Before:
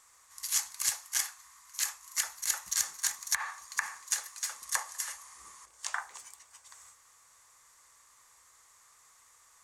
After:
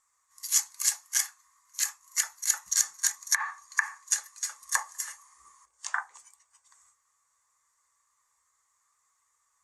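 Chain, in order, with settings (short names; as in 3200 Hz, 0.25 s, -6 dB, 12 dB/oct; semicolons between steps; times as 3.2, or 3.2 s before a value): spectral expander 1.5:1; gain +4.5 dB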